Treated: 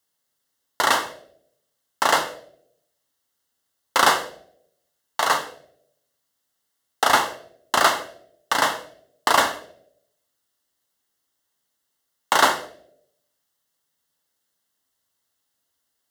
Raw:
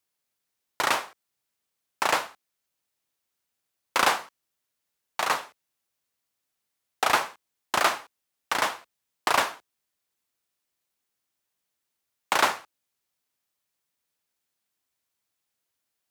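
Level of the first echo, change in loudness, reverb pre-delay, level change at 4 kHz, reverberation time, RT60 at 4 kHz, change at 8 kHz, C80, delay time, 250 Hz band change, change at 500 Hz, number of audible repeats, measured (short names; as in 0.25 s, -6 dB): none, +5.0 dB, 4 ms, +6.0 dB, 0.75 s, 0.50 s, +6.0 dB, 15.5 dB, none, +6.0 dB, +6.0 dB, none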